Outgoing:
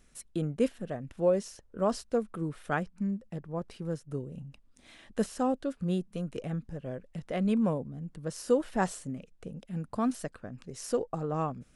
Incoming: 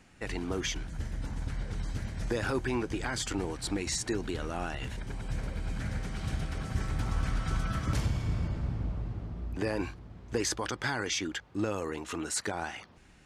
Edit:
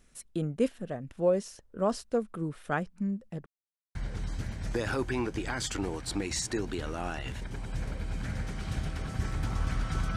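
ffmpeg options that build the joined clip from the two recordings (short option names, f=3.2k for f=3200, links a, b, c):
-filter_complex "[0:a]apad=whole_dur=10.16,atrim=end=10.16,asplit=2[a][b];[a]atrim=end=3.46,asetpts=PTS-STARTPTS,afade=t=out:st=3.456:d=0.004:c=hsin[c];[b]atrim=start=3.46:end=3.95,asetpts=PTS-STARTPTS,volume=0[d];[1:a]atrim=start=1.51:end=7.72,asetpts=PTS-STARTPTS,afade=t=in:d=0.004:c=hsin[e];[c][d][e]concat=n=3:v=0:a=1"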